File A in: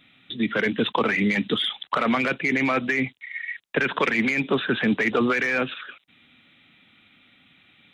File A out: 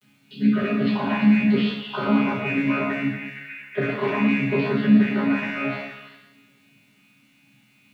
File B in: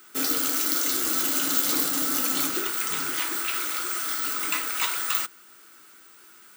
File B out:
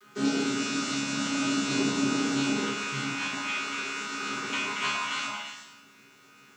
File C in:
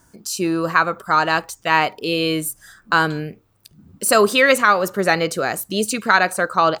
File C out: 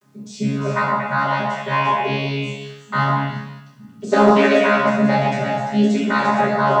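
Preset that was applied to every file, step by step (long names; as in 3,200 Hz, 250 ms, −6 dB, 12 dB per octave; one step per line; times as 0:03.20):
channel vocoder with a chord as carrier bare fifth, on C#3
coupled-rooms reverb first 0.83 s, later 2.5 s, from −27 dB, DRR −8 dB
bit-depth reduction 10 bits, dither none
on a send: echo through a band-pass that steps 115 ms, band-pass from 880 Hz, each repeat 1.4 octaves, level 0 dB
on the sum: level −5.5 dB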